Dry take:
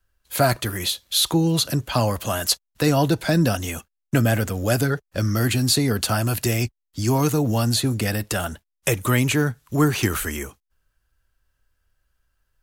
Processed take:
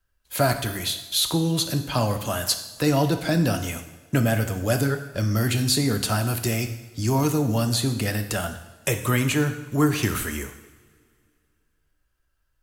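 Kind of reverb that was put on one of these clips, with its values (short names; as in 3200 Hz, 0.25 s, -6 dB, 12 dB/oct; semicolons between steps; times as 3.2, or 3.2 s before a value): two-slope reverb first 0.89 s, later 2.6 s, from -18 dB, DRR 6.5 dB; gain -3 dB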